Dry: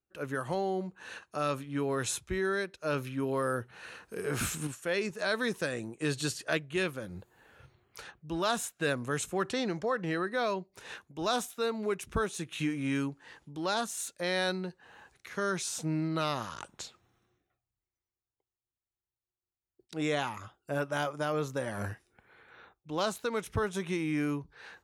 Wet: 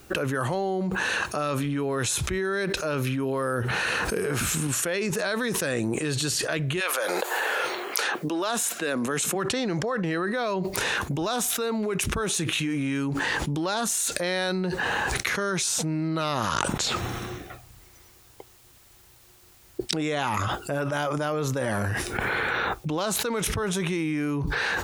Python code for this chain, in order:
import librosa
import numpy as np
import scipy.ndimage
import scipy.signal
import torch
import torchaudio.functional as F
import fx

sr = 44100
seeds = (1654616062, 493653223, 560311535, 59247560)

y = fx.highpass(x, sr, hz=fx.line((6.79, 640.0), (9.34, 150.0)), slope=24, at=(6.79, 9.34), fade=0.02)
y = fx.env_flatten(y, sr, amount_pct=100)